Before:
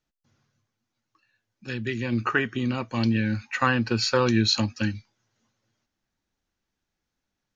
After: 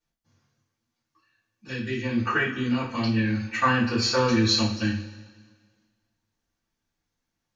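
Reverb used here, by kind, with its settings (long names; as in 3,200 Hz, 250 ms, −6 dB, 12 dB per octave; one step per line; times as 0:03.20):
coupled-rooms reverb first 0.36 s, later 1.6 s, from −17 dB, DRR −9 dB
level −9 dB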